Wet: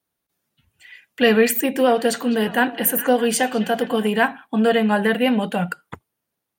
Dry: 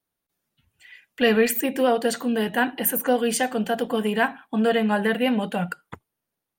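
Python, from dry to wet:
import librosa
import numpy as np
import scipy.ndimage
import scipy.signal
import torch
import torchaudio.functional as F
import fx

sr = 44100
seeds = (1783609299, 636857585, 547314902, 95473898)

y = scipy.signal.sosfilt(scipy.signal.butter(2, 45.0, 'highpass', fs=sr, output='sos'), x)
y = fx.echo_stepped(y, sr, ms=204, hz=3100.0, octaves=-0.7, feedback_pct=70, wet_db=-10.0, at=(1.88, 4.07), fade=0.02)
y = y * librosa.db_to_amplitude(3.5)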